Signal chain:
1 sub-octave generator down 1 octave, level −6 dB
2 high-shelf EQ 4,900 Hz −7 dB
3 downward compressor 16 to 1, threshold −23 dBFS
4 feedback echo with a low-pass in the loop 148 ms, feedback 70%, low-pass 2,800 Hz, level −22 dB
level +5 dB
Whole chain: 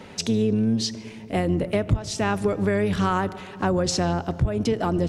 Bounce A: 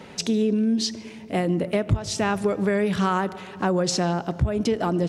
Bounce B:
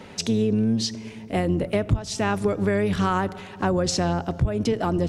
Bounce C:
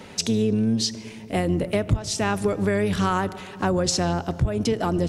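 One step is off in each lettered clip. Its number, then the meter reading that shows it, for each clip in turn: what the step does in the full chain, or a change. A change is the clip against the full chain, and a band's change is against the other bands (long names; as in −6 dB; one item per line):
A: 1, 125 Hz band −2.0 dB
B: 4, echo-to-direct ratio −21.0 dB to none audible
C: 2, 8 kHz band +3.5 dB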